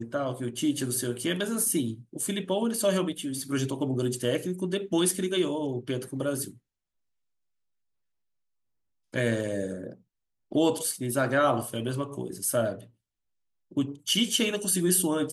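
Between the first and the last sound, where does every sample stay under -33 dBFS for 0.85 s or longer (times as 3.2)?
6.48–9.14
12.75–13.77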